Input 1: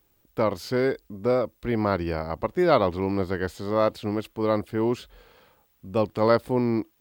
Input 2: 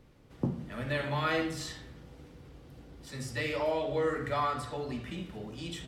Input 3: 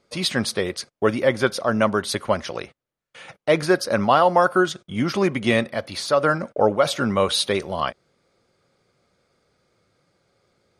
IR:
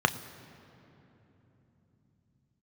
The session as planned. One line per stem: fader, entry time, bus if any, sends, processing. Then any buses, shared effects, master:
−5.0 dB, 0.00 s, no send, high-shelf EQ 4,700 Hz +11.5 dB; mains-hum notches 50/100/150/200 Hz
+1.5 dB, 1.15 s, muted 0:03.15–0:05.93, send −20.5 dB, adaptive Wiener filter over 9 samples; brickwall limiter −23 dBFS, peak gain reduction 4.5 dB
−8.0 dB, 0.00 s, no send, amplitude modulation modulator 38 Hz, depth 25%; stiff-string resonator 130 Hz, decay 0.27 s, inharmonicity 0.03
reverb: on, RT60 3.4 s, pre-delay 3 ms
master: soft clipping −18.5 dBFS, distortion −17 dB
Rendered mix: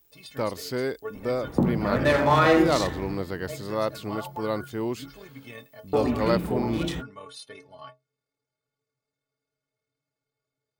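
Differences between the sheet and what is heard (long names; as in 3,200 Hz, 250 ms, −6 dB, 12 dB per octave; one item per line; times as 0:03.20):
stem 1: missing mains-hum notches 50/100/150/200 Hz
stem 2 +1.5 dB → +12.0 dB
master: missing soft clipping −18.5 dBFS, distortion −17 dB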